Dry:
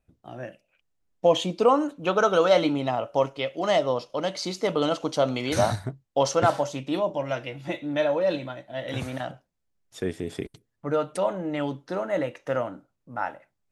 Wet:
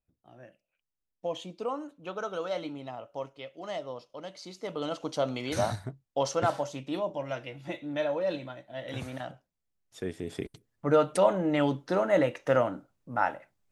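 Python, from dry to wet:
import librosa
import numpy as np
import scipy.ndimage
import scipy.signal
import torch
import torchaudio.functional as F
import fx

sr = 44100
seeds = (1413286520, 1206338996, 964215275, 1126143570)

y = fx.gain(x, sr, db=fx.line((4.47, -14.0), (5.11, -6.0), (10.1, -6.0), (10.93, 2.5)))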